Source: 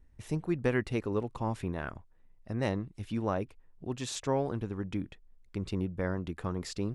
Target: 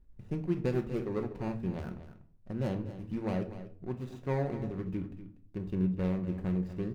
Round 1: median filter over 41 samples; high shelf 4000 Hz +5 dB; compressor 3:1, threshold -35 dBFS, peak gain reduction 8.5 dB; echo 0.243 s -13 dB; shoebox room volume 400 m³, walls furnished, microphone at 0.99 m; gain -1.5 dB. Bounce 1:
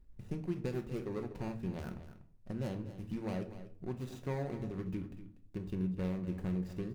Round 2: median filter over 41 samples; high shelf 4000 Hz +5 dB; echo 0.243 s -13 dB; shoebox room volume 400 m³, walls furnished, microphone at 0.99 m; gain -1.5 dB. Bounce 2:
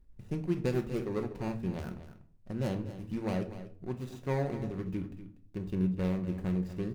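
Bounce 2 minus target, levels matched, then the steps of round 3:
8000 Hz band +7.0 dB
median filter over 41 samples; high shelf 4000 Hz -4 dB; echo 0.243 s -13 dB; shoebox room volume 400 m³, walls furnished, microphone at 0.99 m; gain -1.5 dB

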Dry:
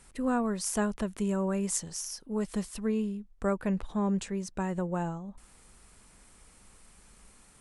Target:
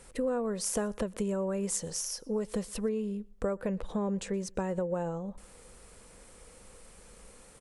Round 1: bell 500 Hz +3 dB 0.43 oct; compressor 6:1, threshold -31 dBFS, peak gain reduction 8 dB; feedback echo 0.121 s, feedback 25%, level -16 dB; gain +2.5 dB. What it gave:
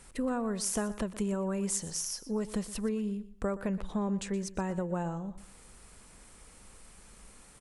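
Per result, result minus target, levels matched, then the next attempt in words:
echo-to-direct +11 dB; 500 Hz band -3.0 dB
bell 500 Hz +3 dB 0.43 oct; compressor 6:1, threshold -31 dBFS, peak gain reduction 8 dB; feedback echo 0.121 s, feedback 25%, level -27 dB; gain +2.5 dB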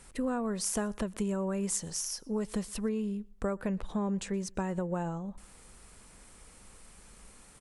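500 Hz band -3.0 dB
bell 500 Hz +13.5 dB 0.43 oct; compressor 6:1, threshold -31 dBFS, peak gain reduction 12.5 dB; feedback echo 0.121 s, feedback 25%, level -27 dB; gain +2.5 dB

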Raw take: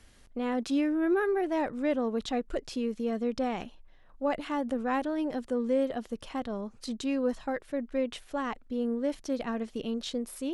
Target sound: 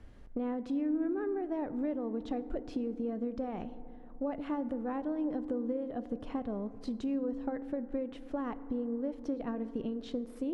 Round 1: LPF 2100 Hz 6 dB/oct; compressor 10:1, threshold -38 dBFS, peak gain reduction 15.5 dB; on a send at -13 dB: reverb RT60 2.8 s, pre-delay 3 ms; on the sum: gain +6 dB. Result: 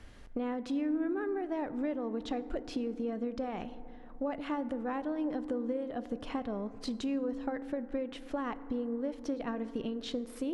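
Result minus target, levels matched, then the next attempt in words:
2000 Hz band +6.0 dB
LPF 580 Hz 6 dB/oct; compressor 10:1, threshold -38 dBFS, peak gain reduction 14 dB; on a send at -13 dB: reverb RT60 2.8 s, pre-delay 3 ms; on the sum: gain +6 dB

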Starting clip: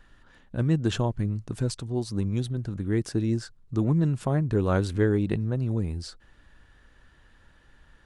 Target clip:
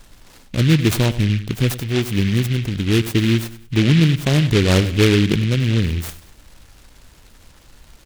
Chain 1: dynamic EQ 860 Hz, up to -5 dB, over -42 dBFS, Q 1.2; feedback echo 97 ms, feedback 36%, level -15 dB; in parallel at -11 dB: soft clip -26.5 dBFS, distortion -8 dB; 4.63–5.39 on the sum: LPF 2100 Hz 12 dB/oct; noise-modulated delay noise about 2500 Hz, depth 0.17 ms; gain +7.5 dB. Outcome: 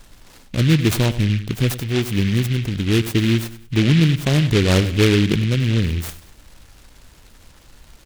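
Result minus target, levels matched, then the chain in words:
soft clip: distortion +11 dB
dynamic EQ 860 Hz, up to -5 dB, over -42 dBFS, Q 1.2; feedback echo 97 ms, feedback 36%, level -15 dB; in parallel at -11 dB: soft clip -16 dBFS, distortion -19 dB; 4.63–5.39 on the sum: LPF 2100 Hz 12 dB/oct; noise-modulated delay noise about 2500 Hz, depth 0.17 ms; gain +7.5 dB

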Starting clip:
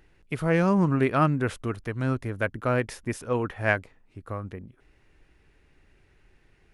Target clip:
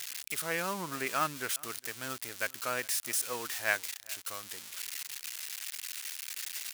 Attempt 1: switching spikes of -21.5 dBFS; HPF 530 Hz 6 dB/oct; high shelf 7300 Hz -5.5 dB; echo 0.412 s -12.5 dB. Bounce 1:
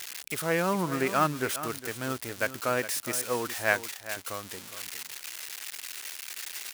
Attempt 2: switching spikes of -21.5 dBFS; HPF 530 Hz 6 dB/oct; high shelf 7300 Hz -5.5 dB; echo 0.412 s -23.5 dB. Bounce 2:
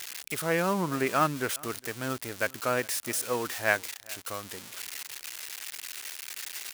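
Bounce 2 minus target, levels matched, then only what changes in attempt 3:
500 Hz band +5.5 dB
change: HPF 2100 Hz 6 dB/oct

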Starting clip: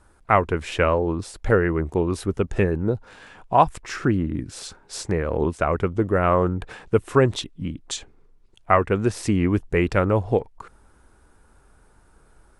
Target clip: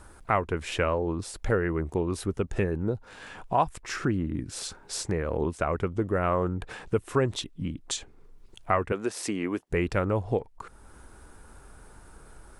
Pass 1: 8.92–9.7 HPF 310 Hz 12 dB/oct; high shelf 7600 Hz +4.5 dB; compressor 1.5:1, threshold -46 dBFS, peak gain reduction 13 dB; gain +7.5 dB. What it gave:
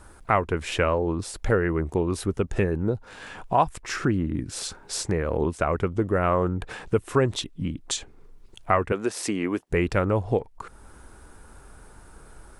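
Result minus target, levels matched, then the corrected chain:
compressor: peak gain reduction -3.5 dB
8.92–9.7 HPF 310 Hz 12 dB/oct; high shelf 7600 Hz +4.5 dB; compressor 1.5:1, threshold -56 dBFS, peak gain reduction 16 dB; gain +7.5 dB

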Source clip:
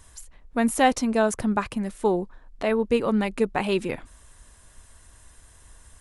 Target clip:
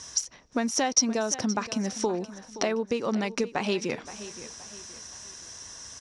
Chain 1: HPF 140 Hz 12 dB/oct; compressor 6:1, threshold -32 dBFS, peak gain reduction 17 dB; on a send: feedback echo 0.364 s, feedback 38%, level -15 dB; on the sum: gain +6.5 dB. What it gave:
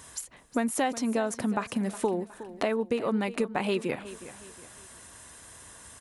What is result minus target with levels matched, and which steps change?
8000 Hz band -8.0 dB; echo 0.158 s early
add after compressor: synth low-pass 5700 Hz, resonance Q 15; change: feedback echo 0.522 s, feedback 38%, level -15 dB

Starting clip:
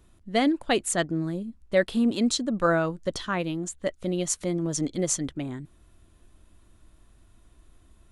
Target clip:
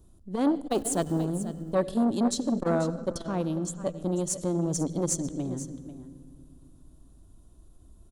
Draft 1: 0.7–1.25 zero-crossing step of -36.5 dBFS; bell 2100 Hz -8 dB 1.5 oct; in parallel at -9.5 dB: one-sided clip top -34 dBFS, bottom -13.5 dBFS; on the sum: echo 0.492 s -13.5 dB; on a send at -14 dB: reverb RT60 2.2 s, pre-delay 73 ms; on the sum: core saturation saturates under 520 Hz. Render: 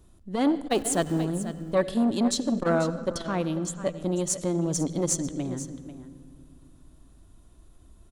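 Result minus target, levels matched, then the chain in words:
2000 Hz band +5.5 dB
0.7–1.25 zero-crossing step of -36.5 dBFS; bell 2100 Hz -20 dB 1.5 oct; in parallel at -9.5 dB: one-sided clip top -34 dBFS, bottom -13.5 dBFS; on the sum: echo 0.492 s -13.5 dB; on a send at -14 dB: reverb RT60 2.2 s, pre-delay 73 ms; on the sum: core saturation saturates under 520 Hz

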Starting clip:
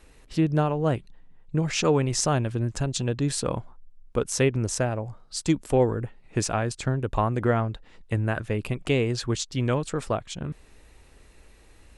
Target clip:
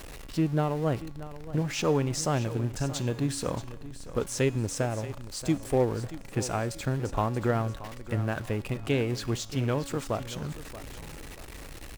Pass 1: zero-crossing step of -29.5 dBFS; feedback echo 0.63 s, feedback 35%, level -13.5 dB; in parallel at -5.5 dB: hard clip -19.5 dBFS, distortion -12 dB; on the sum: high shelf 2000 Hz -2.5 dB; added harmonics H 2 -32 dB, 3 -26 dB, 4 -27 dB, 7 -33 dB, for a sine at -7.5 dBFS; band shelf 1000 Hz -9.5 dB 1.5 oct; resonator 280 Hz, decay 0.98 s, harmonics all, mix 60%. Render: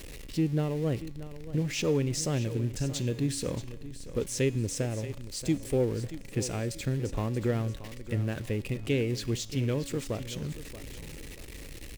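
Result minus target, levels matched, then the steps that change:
hard clip: distortion +36 dB; 1000 Hz band -9.0 dB
change: hard clip -10 dBFS, distortion -48 dB; remove: band shelf 1000 Hz -9.5 dB 1.5 oct

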